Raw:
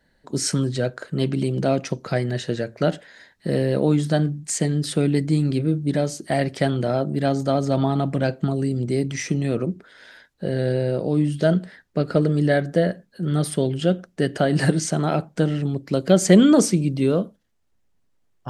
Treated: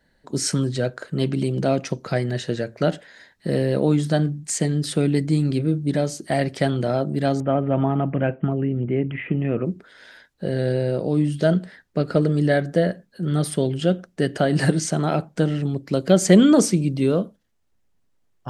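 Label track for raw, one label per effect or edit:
7.400000	9.660000	steep low-pass 3 kHz 72 dB/octave

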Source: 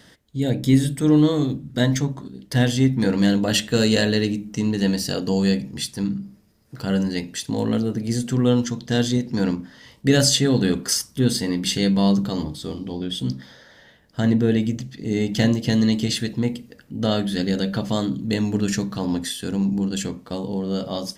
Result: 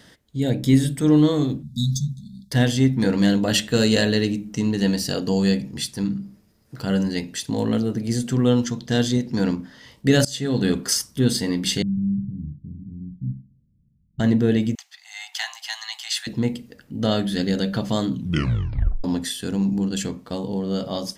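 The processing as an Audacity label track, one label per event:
1.630000	2.510000	spectral selection erased 240–3400 Hz
10.250000	10.690000	fade in, from -23.5 dB
11.820000	14.200000	inverse Chebyshev low-pass stop band from 820 Hz, stop band 70 dB
14.750000	16.270000	steep high-pass 740 Hz 96 dB/octave
18.110000	18.110000	tape stop 0.93 s

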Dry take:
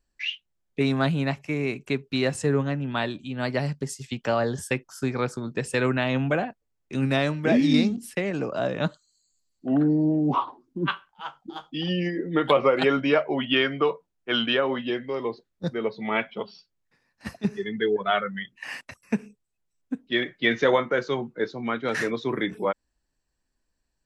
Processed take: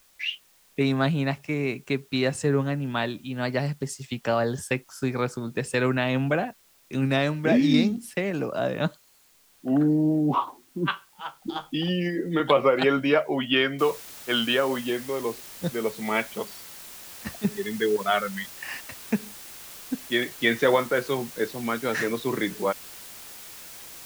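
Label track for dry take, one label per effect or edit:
11.410000	12.400000	three bands compressed up and down depth 70%
13.790000	13.790000	noise floor step -60 dB -43 dB

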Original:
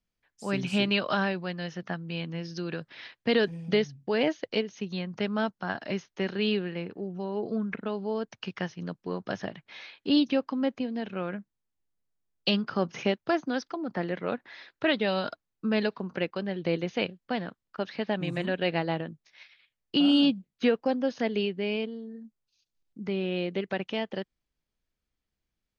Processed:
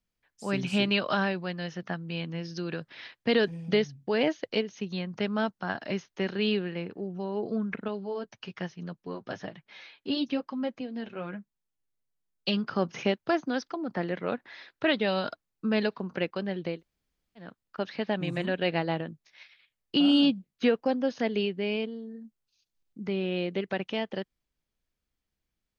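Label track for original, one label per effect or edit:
7.880000	12.570000	flange 1.1 Hz, delay 4.6 ms, depth 3.9 ms, regen -27%
16.710000	17.470000	room tone, crossfade 0.24 s

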